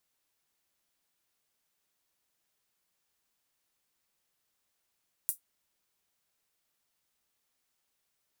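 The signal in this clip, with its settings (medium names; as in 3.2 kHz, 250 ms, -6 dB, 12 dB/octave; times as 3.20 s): closed hi-hat, high-pass 9.7 kHz, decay 0.13 s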